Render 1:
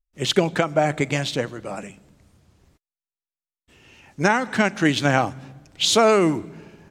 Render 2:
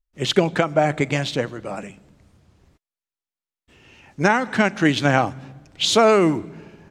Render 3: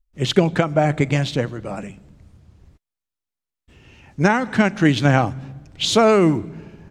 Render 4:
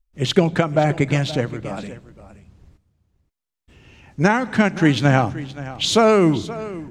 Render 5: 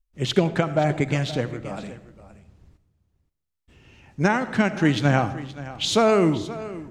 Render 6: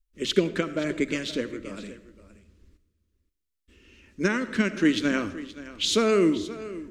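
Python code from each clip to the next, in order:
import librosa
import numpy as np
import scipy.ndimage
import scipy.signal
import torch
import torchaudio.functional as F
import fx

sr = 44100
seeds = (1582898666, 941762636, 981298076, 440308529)

y1 = fx.high_shelf(x, sr, hz=6700.0, db=-7.5)
y1 = F.gain(torch.from_numpy(y1), 1.5).numpy()
y2 = fx.low_shelf(y1, sr, hz=180.0, db=11.0)
y2 = F.gain(torch.from_numpy(y2), -1.0).numpy()
y3 = y2 + 10.0 ** (-16.0 / 20.0) * np.pad(y2, (int(524 * sr / 1000.0), 0))[:len(y2)]
y4 = fx.rev_freeverb(y3, sr, rt60_s=0.72, hf_ratio=0.45, predelay_ms=35, drr_db=14.0)
y4 = F.gain(torch.from_numpy(y4), -4.0).numpy()
y5 = fx.fixed_phaser(y4, sr, hz=320.0, stages=4)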